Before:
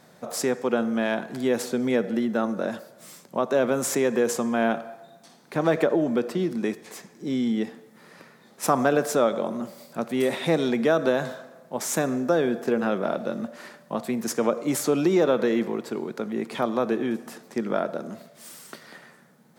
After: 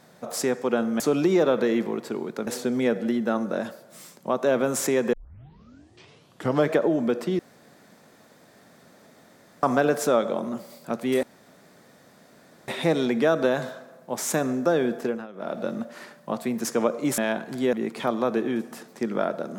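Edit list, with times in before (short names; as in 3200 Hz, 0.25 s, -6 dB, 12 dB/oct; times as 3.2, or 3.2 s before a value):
1–1.55 swap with 14.81–16.28
4.21 tape start 1.61 s
6.47–8.71 room tone
10.31 insert room tone 1.45 s
12.61–13.25 dip -18 dB, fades 0.29 s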